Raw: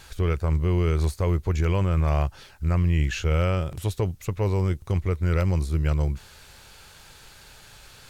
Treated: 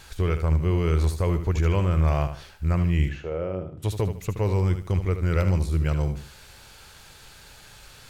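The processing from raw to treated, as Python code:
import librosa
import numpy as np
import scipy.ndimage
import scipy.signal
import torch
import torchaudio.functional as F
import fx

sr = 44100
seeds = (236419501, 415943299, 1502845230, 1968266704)

p1 = fx.bandpass_q(x, sr, hz=fx.line((3.08, 770.0), (3.82, 220.0)), q=1.2, at=(3.08, 3.82), fade=0.02)
y = p1 + fx.echo_feedback(p1, sr, ms=75, feedback_pct=30, wet_db=-9.5, dry=0)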